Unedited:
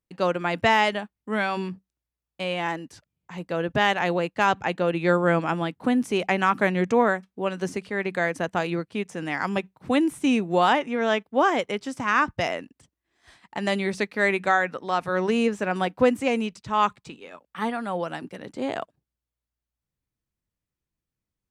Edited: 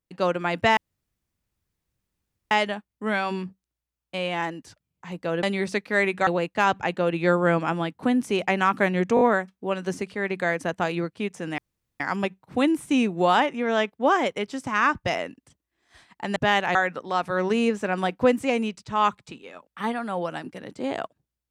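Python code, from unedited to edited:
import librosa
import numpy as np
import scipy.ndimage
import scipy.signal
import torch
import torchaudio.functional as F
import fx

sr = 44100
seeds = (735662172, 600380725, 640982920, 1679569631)

y = fx.edit(x, sr, fx.insert_room_tone(at_s=0.77, length_s=1.74),
    fx.swap(start_s=3.69, length_s=0.39, other_s=13.69, other_length_s=0.84),
    fx.stutter(start_s=6.96, slice_s=0.02, count=4),
    fx.insert_room_tone(at_s=9.33, length_s=0.42), tone=tone)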